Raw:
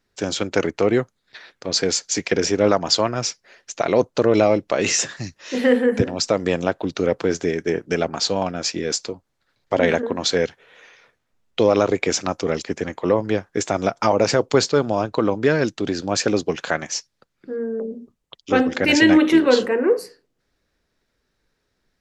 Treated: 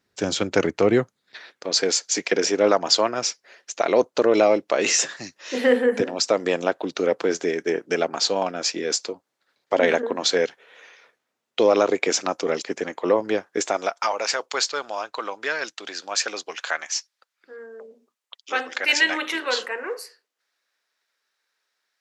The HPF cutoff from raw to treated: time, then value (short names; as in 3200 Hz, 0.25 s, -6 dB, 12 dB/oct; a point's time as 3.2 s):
0.93 s 87 Hz
1.67 s 310 Hz
13.61 s 310 Hz
14.02 s 990 Hz